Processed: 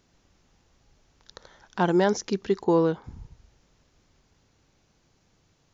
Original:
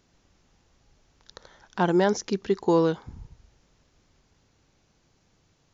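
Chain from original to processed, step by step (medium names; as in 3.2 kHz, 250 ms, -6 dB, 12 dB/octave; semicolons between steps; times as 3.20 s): 2.64–3.04 s: treble shelf 3.2 kHz -10.5 dB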